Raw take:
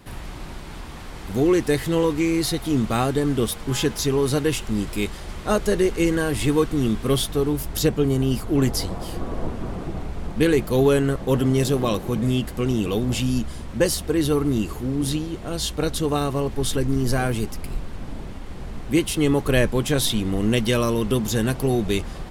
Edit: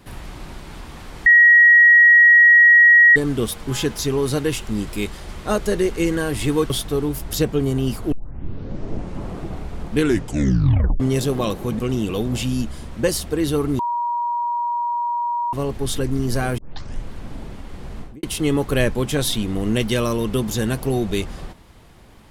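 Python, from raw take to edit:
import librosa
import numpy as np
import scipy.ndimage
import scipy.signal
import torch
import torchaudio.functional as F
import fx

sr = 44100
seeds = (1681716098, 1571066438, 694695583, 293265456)

y = fx.studio_fade_out(x, sr, start_s=18.75, length_s=0.25)
y = fx.edit(y, sr, fx.bleep(start_s=1.26, length_s=1.9, hz=1900.0, db=-7.0),
    fx.cut(start_s=6.7, length_s=0.44),
    fx.tape_start(start_s=8.56, length_s=1.23),
    fx.tape_stop(start_s=10.4, length_s=1.04),
    fx.cut(start_s=12.23, length_s=0.33),
    fx.bleep(start_s=14.56, length_s=1.74, hz=954.0, db=-19.5),
    fx.tape_start(start_s=17.35, length_s=0.52), tone=tone)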